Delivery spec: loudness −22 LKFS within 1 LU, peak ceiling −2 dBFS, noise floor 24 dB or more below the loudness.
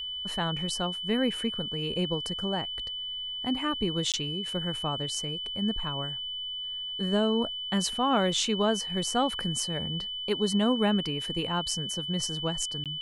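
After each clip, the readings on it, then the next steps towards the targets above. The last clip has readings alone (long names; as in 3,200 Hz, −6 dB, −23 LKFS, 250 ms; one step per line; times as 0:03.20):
number of dropouts 2; longest dropout 17 ms; interfering tone 3,000 Hz; level of the tone −33 dBFS; integrated loudness −29.0 LKFS; sample peak −12.5 dBFS; target loudness −22.0 LKFS
→ repair the gap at 0:04.12/0:12.84, 17 ms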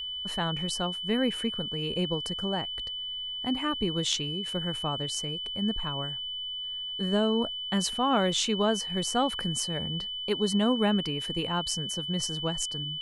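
number of dropouts 0; interfering tone 3,000 Hz; level of the tone −33 dBFS
→ notch filter 3,000 Hz, Q 30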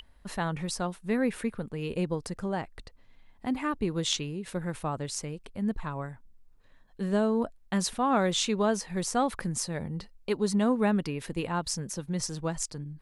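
interfering tone none found; integrated loudness −30.5 LKFS; sample peak −13.5 dBFS; target loudness −22.0 LKFS
→ level +8.5 dB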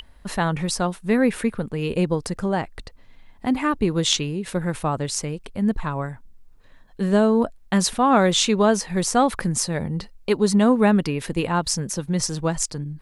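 integrated loudness −22.0 LKFS; sample peak −5.0 dBFS; background noise floor −49 dBFS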